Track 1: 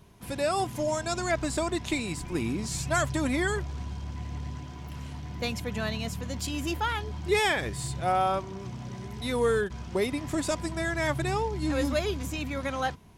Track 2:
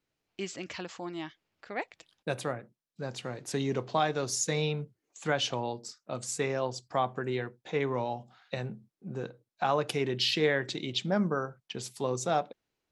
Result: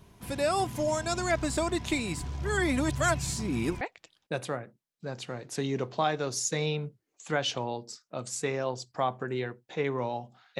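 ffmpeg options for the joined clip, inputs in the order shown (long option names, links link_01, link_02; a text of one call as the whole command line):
ffmpeg -i cue0.wav -i cue1.wav -filter_complex "[0:a]apad=whole_dur=10.59,atrim=end=10.59,asplit=2[link_01][link_02];[link_01]atrim=end=2.242[link_03];[link_02]atrim=start=2.238:end=3.812,asetpts=PTS-STARTPTS,areverse[link_04];[1:a]atrim=start=1.768:end=8.55[link_05];[link_03][link_04]acrossfade=duration=0.004:curve1=hsin:curve2=hsin[link_06];[link_06][link_05]acrossfade=duration=0.004:curve1=hsin:curve2=hsin" out.wav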